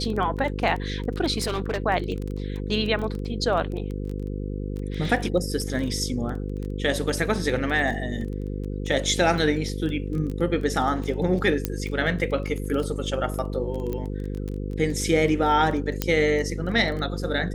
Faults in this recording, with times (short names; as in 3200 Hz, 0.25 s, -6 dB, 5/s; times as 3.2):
buzz 50 Hz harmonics 10 -30 dBFS
crackle 15/s -29 dBFS
1.37–1.78 clipped -21.5 dBFS
11.65 pop -8 dBFS
13.93 pop -18 dBFS
16.02 pop -7 dBFS